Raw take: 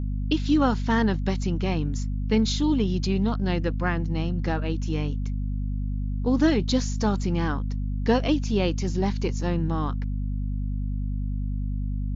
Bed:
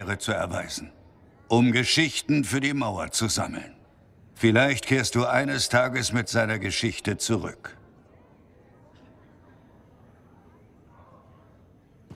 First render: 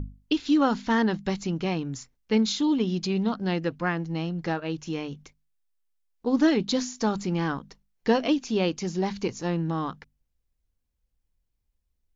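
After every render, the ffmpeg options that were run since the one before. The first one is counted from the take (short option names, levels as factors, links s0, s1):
-af "bandreject=f=50:t=h:w=6,bandreject=f=100:t=h:w=6,bandreject=f=150:t=h:w=6,bandreject=f=200:t=h:w=6,bandreject=f=250:t=h:w=6"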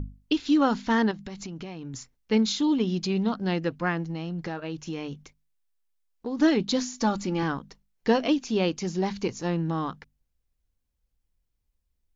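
-filter_complex "[0:a]asettb=1/sr,asplit=3[s0][s1][s2];[s0]atrim=end=1.114[s3];[s1]atrim=start=1.11:end=1.94,asetpts=PTS-STARTPTS,afade=t=in:d=0.004:c=qsin,afade=t=out:st=0.826:d=0.004:c=qsin,acompressor=threshold=0.0224:ratio=12:attack=3.2:release=140:knee=1:detection=peak[s4];[s2]atrim=start=1.936[s5];[s3][s4]acrossfade=d=0.004:c1=hsin:c2=qsin[s6];[s6][s5]acrossfade=d=0.004:c1=qsin:c2=hsin,asettb=1/sr,asplit=3[s7][s8][s9];[s7]atrim=end=4.054[s10];[s8]atrim=start=4.05:end=6.4,asetpts=PTS-STARTPTS,afade=t=in:d=0.004:c=qsin,afade=t=out:st=2.346:d=0.004:c=qsin,acompressor=threshold=0.0398:ratio=4:attack=3.2:release=140:knee=1:detection=peak[s11];[s9]atrim=start=6.396[s12];[s10][s11]acrossfade=d=0.004:c1=hsin:c2=qsin[s13];[s13][s12]acrossfade=d=0.004:c1=qsin:c2=hsin,asettb=1/sr,asplit=3[s14][s15][s16];[s14]atrim=end=6.934[s17];[s15]atrim=start=6.93:end=7.43,asetpts=PTS-STARTPTS,afade=t=in:d=0.004:c=qsin,afade=t=out:st=0.496:d=0.004:c=qsin,aecho=1:1:3.5:0.51,atrim=end_sample=22050[s18];[s16]atrim=start=7.426[s19];[s17][s18]acrossfade=d=0.004:c1=hsin:c2=qsin[s20];[s20][s19]acrossfade=d=0.004:c1=qsin:c2=hsin"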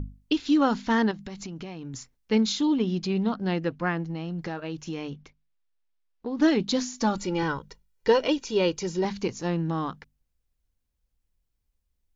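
-filter_complex "[0:a]asettb=1/sr,asplit=3[s0][s1][s2];[s0]atrim=end=2.674[s3];[s1]atrim=start=2.67:end=4.29,asetpts=PTS-STARTPTS,afade=t=in:d=0.004:c=qsin,afade=t=out:st=1.616:d=0.004:c=qsin,highshelf=f=6100:g=-9[s4];[s2]atrim=start=4.286[s5];[s3][s4]acrossfade=d=0.004:c1=hsin:c2=qsin[s6];[s6][s5]acrossfade=d=0.004:c1=qsin:c2=hsin,asettb=1/sr,asplit=3[s7][s8][s9];[s7]atrim=end=5.104[s10];[s8]atrim=start=5.1:end=6.42,asetpts=PTS-STARTPTS,afade=t=in:d=0.004:c=qsin,afade=t=out:st=1.316:d=0.004:c=qsin,lowpass=4200[s11];[s9]atrim=start=6.416[s12];[s10][s11]acrossfade=d=0.004:c1=hsin:c2=qsin[s13];[s13][s12]acrossfade=d=0.004:c1=qsin:c2=hsin,asettb=1/sr,asplit=3[s14][s15][s16];[s14]atrim=end=7.174[s17];[s15]atrim=start=7.17:end=9.05,asetpts=PTS-STARTPTS,afade=t=in:d=0.004:c=qsin,afade=t=out:st=1.876:d=0.004:c=qsin,aecho=1:1:2.1:0.65,atrim=end_sample=82908[s18];[s16]atrim=start=9.046[s19];[s17][s18]acrossfade=d=0.004:c1=hsin:c2=qsin[s20];[s20][s19]acrossfade=d=0.004:c1=qsin:c2=hsin"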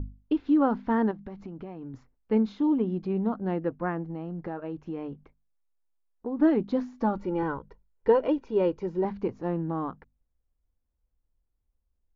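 -af "lowpass=1100,equalizer=f=150:t=o:w=0.73:g=-5"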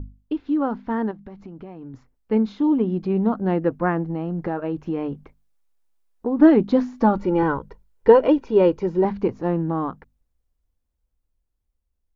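-af "dynaudnorm=f=650:g=9:m=3.76"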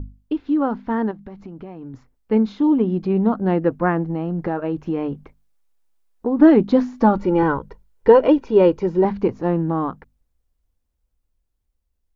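-af "volume=1.33,alimiter=limit=0.794:level=0:latency=1"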